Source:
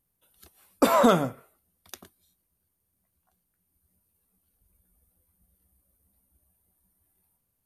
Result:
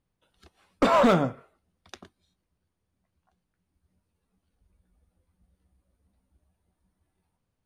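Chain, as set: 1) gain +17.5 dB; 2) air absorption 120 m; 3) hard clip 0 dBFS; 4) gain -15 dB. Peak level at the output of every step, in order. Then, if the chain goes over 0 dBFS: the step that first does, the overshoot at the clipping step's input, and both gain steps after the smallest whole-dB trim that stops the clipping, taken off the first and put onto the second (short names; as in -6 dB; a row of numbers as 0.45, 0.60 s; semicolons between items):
+10.0, +9.5, 0.0, -15.0 dBFS; step 1, 9.5 dB; step 1 +7.5 dB, step 4 -5 dB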